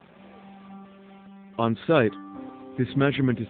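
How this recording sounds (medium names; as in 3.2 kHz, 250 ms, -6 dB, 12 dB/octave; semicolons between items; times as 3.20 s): a quantiser's noise floor 8-bit, dither none; AMR-NB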